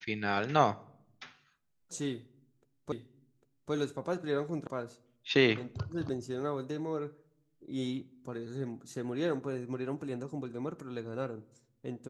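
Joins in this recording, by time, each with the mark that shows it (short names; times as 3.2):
2.92 repeat of the last 0.8 s
4.67 sound cut off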